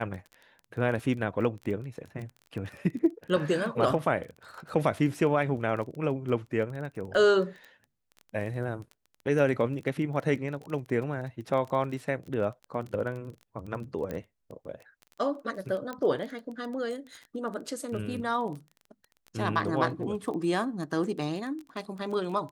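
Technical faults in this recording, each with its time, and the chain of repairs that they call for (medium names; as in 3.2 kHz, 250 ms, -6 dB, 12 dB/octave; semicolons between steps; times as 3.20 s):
crackle 20 per s -36 dBFS
14.11 s: pop -22 dBFS
15.93 s: pop -23 dBFS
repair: de-click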